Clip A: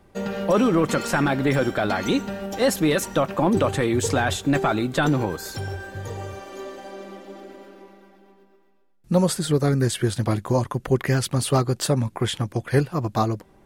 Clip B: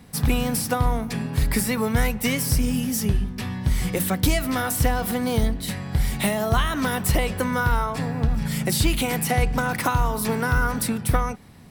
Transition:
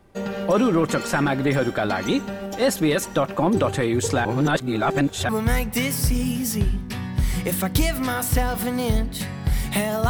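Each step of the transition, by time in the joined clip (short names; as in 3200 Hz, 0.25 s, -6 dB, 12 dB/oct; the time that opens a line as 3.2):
clip A
4.25–5.29 reverse
5.29 switch to clip B from 1.77 s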